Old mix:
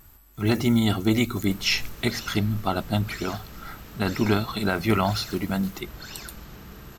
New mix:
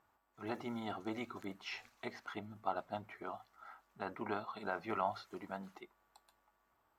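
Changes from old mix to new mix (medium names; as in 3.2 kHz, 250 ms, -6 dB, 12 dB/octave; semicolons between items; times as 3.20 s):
speech -8.5 dB; second sound: muted; master: add band-pass filter 870 Hz, Q 1.4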